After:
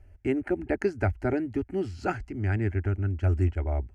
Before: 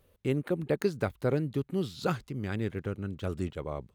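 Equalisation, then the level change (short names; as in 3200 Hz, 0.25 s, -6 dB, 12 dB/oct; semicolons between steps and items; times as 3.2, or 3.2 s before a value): air absorption 100 m; resonant low shelf 120 Hz +11 dB, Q 1.5; fixed phaser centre 740 Hz, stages 8; +7.0 dB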